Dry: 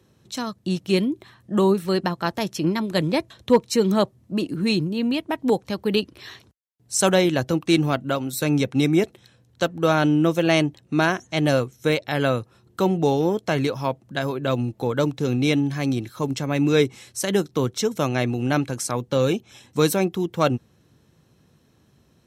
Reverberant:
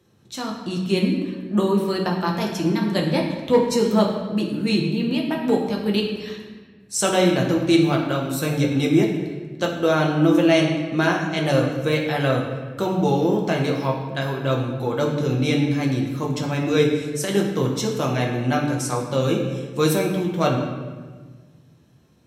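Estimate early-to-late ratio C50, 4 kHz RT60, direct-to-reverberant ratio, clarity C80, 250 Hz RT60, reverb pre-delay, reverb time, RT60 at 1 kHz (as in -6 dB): 4.5 dB, 1.0 s, -1.5 dB, 6.0 dB, 2.0 s, 6 ms, 1.5 s, 1.3 s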